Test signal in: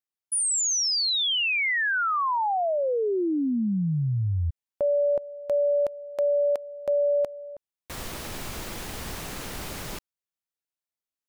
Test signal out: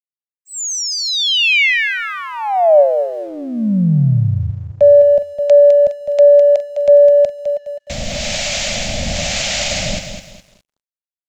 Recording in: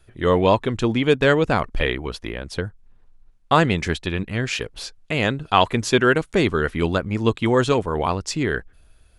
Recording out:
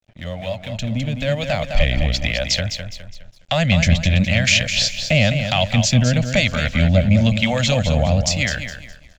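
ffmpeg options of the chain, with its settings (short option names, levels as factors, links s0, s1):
-filter_complex "[0:a]acrossover=split=560[s0][s1];[s0]aeval=exprs='val(0)*(1-0.7/2+0.7/2*cos(2*PI*1*n/s))':c=same[s2];[s1]aeval=exprs='val(0)*(1-0.7/2-0.7/2*cos(2*PI*1*n/s))':c=same[s3];[s2][s3]amix=inputs=2:normalize=0,highshelf=f=4500:g=6.5,acrossover=split=160[s4][s5];[s5]acompressor=threshold=0.0355:ratio=5:attack=0.21:release=341:knee=2.83:detection=peak[s6];[s4][s6]amix=inputs=2:normalize=0,asplit=2[s7][s8];[s8]asoftclip=type=tanh:threshold=0.0473,volume=0.501[s9];[s7][s9]amix=inputs=2:normalize=0,aresample=16000,aresample=44100,firequalizer=gain_entry='entry(150,0);entry(220,3);entry(390,-23);entry(580,12);entry(1000,-11);entry(2200,7);entry(5100,5)':delay=0.05:min_phase=1,asplit=2[s10][s11];[s11]aecho=0:1:207|414|621|828:0.398|0.147|0.0545|0.0202[s12];[s10][s12]amix=inputs=2:normalize=0,dynaudnorm=f=220:g=13:m=4.73,aeval=exprs='sgn(val(0))*max(abs(val(0))-0.00398,0)':c=same"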